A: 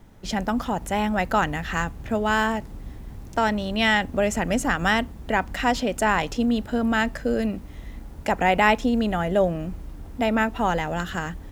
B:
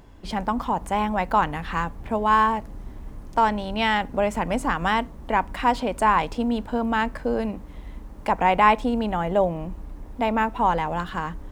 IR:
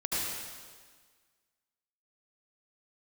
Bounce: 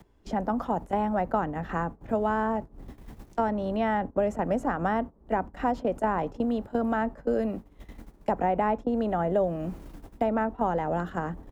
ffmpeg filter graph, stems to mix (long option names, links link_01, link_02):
-filter_complex "[0:a]volume=2.5dB[link_01];[1:a]equalizer=frequency=400:width_type=o:width=0.43:gain=7.5,acompressor=threshold=-27dB:ratio=5,adelay=18,volume=-15.5dB,asplit=2[link_02][link_03];[link_03]apad=whole_len=507844[link_04];[link_01][link_04]sidechaingate=range=-33dB:threshold=-50dB:ratio=16:detection=peak[link_05];[link_05][link_02]amix=inputs=2:normalize=0,acrossover=split=170|430|1200[link_06][link_07][link_08][link_09];[link_06]acompressor=threshold=-43dB:ratio=4[link_10];[link_07]acompressor=threshold=-31dB:ratio=4[link_11];[link_08]acompressor=threshold=-25dB:ratio=4[link_12];[link_09]acompressor=threshold=-56dB:ratio=4[link_13];[link_10][link_11][link_12][link_13]amix=inputs=4:normalize=0"